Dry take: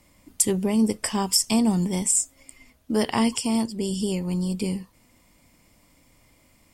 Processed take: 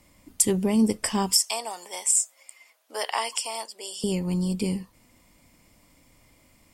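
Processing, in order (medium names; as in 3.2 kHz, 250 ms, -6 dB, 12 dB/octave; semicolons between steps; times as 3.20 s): 1.39–4.04 s: high-pass 580 Hz 24 dB/octave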